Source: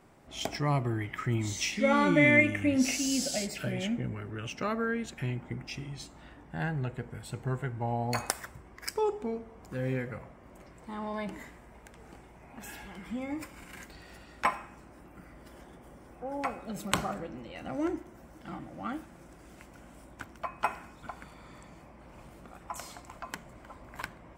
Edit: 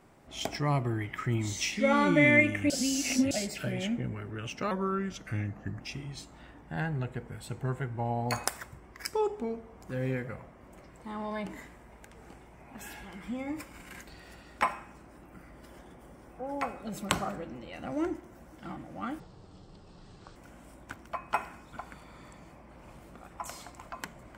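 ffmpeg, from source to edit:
-filter_complex "[0:a]asplit=7[a][b][c][d][e][f][g];[a]atrim=end=2.702[h];[b]atrim=start=2.698:end=3.312,asetpts=PTS-STARTPTS,areverse[i];[c]atrim=start=3.308:end=4.714[j];[d]atrim=start=4.71:end=5.63,asetpts=PTS-STARTPTS,asetrate=37044,aresample=44100[k];[e]atrim=start=5.626:end=19.024[l];[f]atrim=start=19.02:end=19.66,asetpts=PTS-STARTPTS,asetrate=24255,aresample=44100,atrim=end_sample=51316,asetpts=PTS-STARTPTS[m];[g]atrim=start=19.656[n];[h][i]acrossfade=d=0.004:c1=hsin:c2=hsin[o];[o][j]acrossfade=d=0.004:c1=hsin:c2=hsin[p];[p][k]acrossfade=d=0.004:c1=hsin:c2=hsin[q];[q][l]acrossfade=d=0.004:c1=hsin:c2=hsin[r];[r][m]acrossfade=d=0.004:c1=hsin:c2=hsin[s];[s][n]acrossfade=d=0.004:c1=hsin:c2=hsin"

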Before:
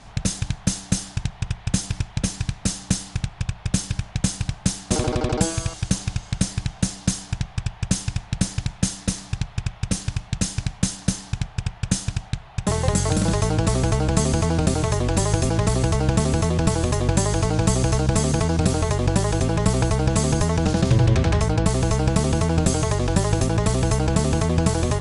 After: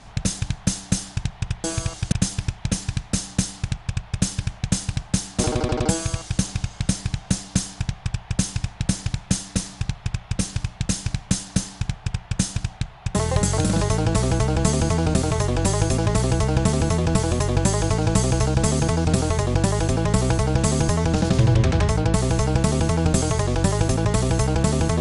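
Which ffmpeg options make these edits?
-filter_complex "[0:a]asplit=3[a][b][c];[a]atrim=end=1.642[d];[b]atrim=start=5.438:end=5.922[e];[c]atrim=start=1.638[f];[d][e]acrossfade=d=0.004:c1=hsin:c2=hsin[g];[g][f]acrossfade=d=0.004:c1=hsin:c2=hsin"

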